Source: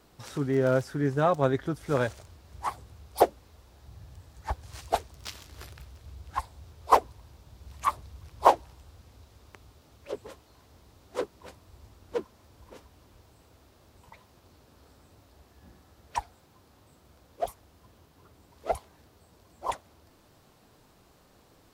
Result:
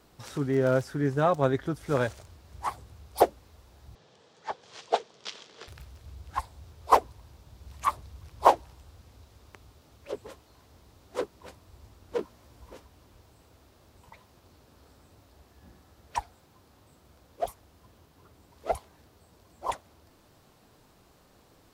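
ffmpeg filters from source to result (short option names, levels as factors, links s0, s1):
-filter_complex "[0:a]asettb=1/sr,asplit=3[s0][s1][s2];[s0]atrim=end=3.954[s3];[s1]atrim=start=3.95:end=5.68,asetpts=PTS-STARTPTS,afade=t=in:d=0.004:c=qsin,afade=t=out:st=1.726:d=0.004:c=qsin,highpass=f=190:w=0.5412,highpass=f=190:w=1.3066,equalizer=f=280:t=q:w=4:g=-7,equalizer=f=460:t=q:w=4:g=8,equalizer=f=3300:t=q:w=4:g=5,lowpass=f=6700:w=0.5412,lowpass=f=6700:w=1.3066[s4];[s2]atrim=start=5.676[s5];[s3][s4]acrossfade=d=0.004:c1=hsin:c2=qsin[s6];[s6][s5]acrossfade=d=0.004:c1=qsin:c2=hsin,asettb=1/sr,asplit=3[s7][s8][s9];[s7]atrim=end=12.174[s10];[s8]atrim=start=12.17:end=12.75,asetpts=PTS-STARTPTS,afade=t=in:d=0.004:c=qsin,afade=t=out:st=0.576:d=0.004:c=qsin,asplit=2[s11][s12];[s12]adelay=17,volume=0.708[s13];[s11][s13]amix=inputs=2:normalize=0,atrim=end_sample=25578[s14];[s9]atrim=start=12.746[s15];[s10][s14]acrossfade=d=0.004:c1=hsin:c2=qsin[s16];[s16][s15]acrossfade=d=0.004:c1=qsin:c2=hsin"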